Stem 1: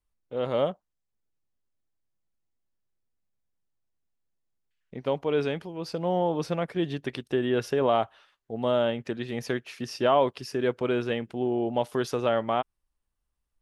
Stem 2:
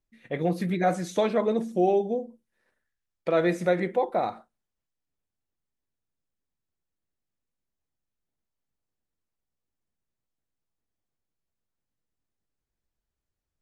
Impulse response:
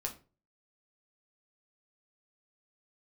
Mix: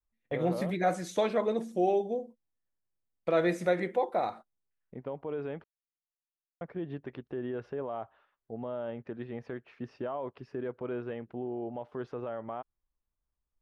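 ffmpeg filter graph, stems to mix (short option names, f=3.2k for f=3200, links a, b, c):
-filter_complex "[0:a]lowpass=1.5k,alimiter=limit=-22dB:level=0:latency=1:release=81,volume=-5dB,asplit=3[a][b][c];[a]atrim=end=5.64,asetpts=PTS-STARTPTS,afade=t=out:st=5.636:d=0.004:c=hsin[d];[b]atrim=start=5.64:end=6.61,asetpts=PTS-STARTPTS,volume=0[e];[c]atrim=start=6.61,asetpts=PTS-STARTPTS,afade=t=in:d=0.004:c=hsin[f];[d][e][f]concat=n=3:v=0:a=1[g];[1:a]agate=range=-28dB:threshold=-41dB:ratio=16:detection=peak,volume=-3dB[h];[g][h]amix=inputs=2:normalize=0,adynamicequalizer=threshold=0.00708:dfrequency=180:dqfactor=0.81:tfrequency=180:tqfactor=0.81:attack=5:release=100:ratio=0.375:range=2.5:mode=cutabove:tftype=bell"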